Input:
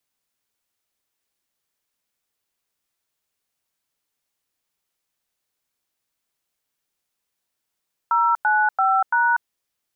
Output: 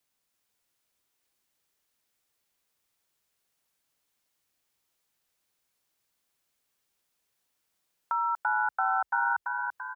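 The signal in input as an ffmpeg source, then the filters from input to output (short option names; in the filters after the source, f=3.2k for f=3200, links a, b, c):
-f lavfi -i "aevalsrc='0.126*clip(min(mod(t,0.338),0.241-mod(t,0.338))/0.002,0,1)*(eq(floor(t/0.338),0)*(sin(2*PI*941*mod(t,0.338))+sin(2*PI*1336*mod(t,0.338)))+eq(floor(t/0.338),1)*(sin(2*PI*852*mod(t,0.338))+sin(2*PI*1477*mod(t,0.338)))+eq(floor(t/0.338),2)*(sin(2*PI*770*mod(t,0.338))+sin(2*PI*1336*mod(t,0.338)))+eq(floor(t/0.338),3)*(sin(2*PI*941*mod(t,0.338))+sin(2*PI*1477*mod(t,0.338))))':d=1.352:s=44100"
-filter_complex "[0:a]acompressor=threshold=-44dB:ratio=1.5,asplit=2[a][b];[b]asplit=6[c][d][e][f][g][h];[c]adelay=337,afreqshift=33,volume=-5dB[i];[d]adelay=674,afreqshift=66,volume=-10.8dB[j];[e]adelay=1011,afreqshift=99,volume=-16.7dB[k];[f]adelay=1348,afreqshift=132,volume=-22.5dB[l];[g]adelay=1685,afreqshift=165,volume=-28.4dB[m];[h]adelay=2022,afreqshift=198,volume=-34.2dB[n];[i][j][k][l][m][n]amix=inputs=6:normalize=0[o];[a][o]amix=inputs=2:normalize=0"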